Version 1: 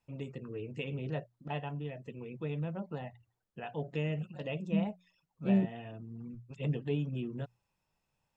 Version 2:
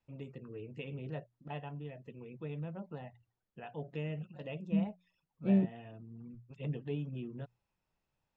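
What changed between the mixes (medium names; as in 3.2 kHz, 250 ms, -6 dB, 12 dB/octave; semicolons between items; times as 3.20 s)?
first voice -4.5 dB; master: add distance through air 100 m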